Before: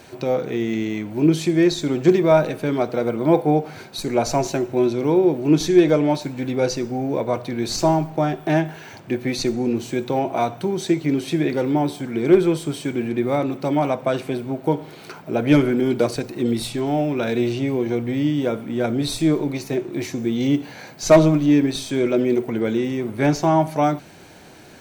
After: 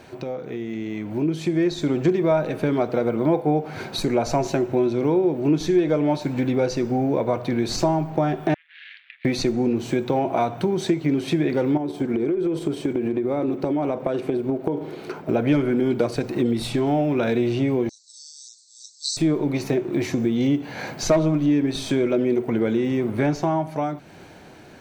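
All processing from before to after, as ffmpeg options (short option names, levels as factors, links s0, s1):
-filter_complex "[0:a]asettb=1/sr,asplit=3[s0][s1][s2];[s0]atrim=end=8.544[s3];[s1]atrim=start=8.54:end=9.25,asetpts=PTS-STARTPTS,afade=t=in:d=0.004:c=qsin,afade=t=out:st=0.706:d=0.004:c=qsin,acompressor=threshold=0.0224:ratio=8:attack=3.2:release=140:knee=1:detection=peak,aeval=exprs='max(val(0),0)':c=same,asuperpass=centerf=2600:order=8:qfactor=1.2[s4];[s2]atrim=start=9.246[s5];[s3][s4]acrossfade=d=0.004:c1=hsin:c2=qsin[s6];[s6][s5]acrossfade=d=0.004:c1=qsin:c2=hsin,asettb=1/sr,asplit=3[s7][s8][s9];[s7]atrim=end=11.774[s10];[s8]atrim=start=11.77:end=15.29,asetpts=PTS-STARTPTS,afade=t=in:d=0.004:c=qsin,afade=t=out:st=3.516:d=0.004:c=qsin,agate=range=0.398:threshold=0.0355:ratio=16:release=100:detection=peak,equalizer=f=370:w=1.2:g=9,acompressor=threshold=0.0631:ratio=12:attack=3.2:release=140:knee=1:detection=peak[s11];[s9]atrim=start=15.286[s12];[s10][s11]acrossfade=d=0.004:c1=hsin:c2=qsin[s13];[s13][s12]acrossfade=d=0.004:c1=qsin:c2=hsin,asettb=1/sr,asplit=3[s14][s15][s16];[s14]atrim=end=17.894[s17];[s15]atrim=start=17.89:end=19.17,asetpts=PTS-STARTPTS,afade=t=in:d=0.004:c=qsin,afade=t=out:st=1.276:d=0.004:c=qsin,asuperpass=centerf=5800:order=20:qfactor=1.4,aemphasis=mode=production:type=75fm[s18];[s16]atrim=start=19.166[s19];[s17][s18]acrossfade=d=0.004:c1=hsin:c2=qsin[s20];[s20][s19]acrossfade=d=0.004:c1=qsin:c2=hsin,acompressor=threshold=0.0316:ratio=3,highshelf=f=4300:g=-9.5,dynaudnorm=f=120:g=21:m=2.82"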